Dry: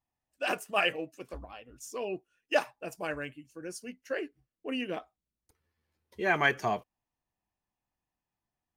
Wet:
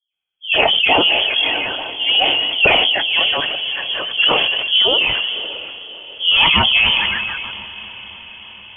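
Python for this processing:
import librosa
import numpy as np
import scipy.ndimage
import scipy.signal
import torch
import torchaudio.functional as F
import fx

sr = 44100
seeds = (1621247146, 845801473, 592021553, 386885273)

p1 = fx.octave_divider(x, sr, octaves=2, level_db=-5.0)
p2 = fx.dynamic_eq(p1, sr, hz=2200.0, q=1.3, threshold_db=-43.0, ratio=4.0, max_db=5)
p3 = fx.fold_sine(p2, sr, drive_db=7, ceiling_db=-9.0)
p4 = p2 + (p3 * 10.0 ** (-6.0 / 20.0))
p5 = fx.echo_stepped(p4, sr, ms=148, hz=240.0, octaves=0.7, feedback_pct=70, wet_db=-9)
p6 = fx.env_flanger(p5, sr, rest_ms=9.7, full_db=-22.0)
p7 = fx.leveller(p6, sr, passes=2)
p8 = fx.low_shelf(p7, sr, hz=460.0, db=4.5)
p9 = fx.dispersion(p8, sr, late='highs', ms=129.0, hz=470.0)
p10 = p9 + fx.echo_diffused(p9, sr, ms=589, feedback_pct=65, wet_db=-16, dry=0)
p11 = fx.freq_invert(p10, sr, carrier_hz=3300)
p12 = fx.sustainer(p11, sr, db_per_s=23.0)
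y = p12 * 10.0 ** (1.0 / 20.0)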